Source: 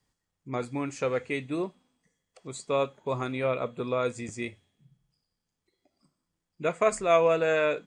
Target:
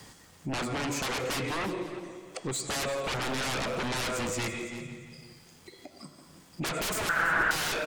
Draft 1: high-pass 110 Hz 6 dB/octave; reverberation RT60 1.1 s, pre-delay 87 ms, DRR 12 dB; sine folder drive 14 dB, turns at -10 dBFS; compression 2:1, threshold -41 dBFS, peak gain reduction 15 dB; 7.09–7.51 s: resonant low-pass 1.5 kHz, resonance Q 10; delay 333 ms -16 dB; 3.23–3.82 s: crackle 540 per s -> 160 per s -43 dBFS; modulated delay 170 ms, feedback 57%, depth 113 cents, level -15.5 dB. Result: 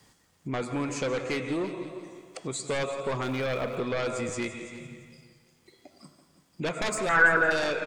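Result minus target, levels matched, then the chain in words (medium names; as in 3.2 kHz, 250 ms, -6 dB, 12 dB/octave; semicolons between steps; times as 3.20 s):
sine folder: distortion -16 dB; compression: peak gain reduction -3.5 dB
high-pass 110 Hz 6 dB/octave; reverberation RT60 1.1 s, pre-delay 87 ms, DRR 12 dB; sine folder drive 25 dB, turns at -10 dBFS; compression 2:1, threshold -48 dBFS, peak gain reduction 18.5 dB; 7.09–7.51 s: resonant low-pass 1.5 kHz, resonance Q 10; delay 333 ms -16 dB; 3.23–3.82 s: crackle 540 per s -> 160 per s -43 dBFS; modulated delay 170 ms, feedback 57%, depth 113 cents, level -15.5 dB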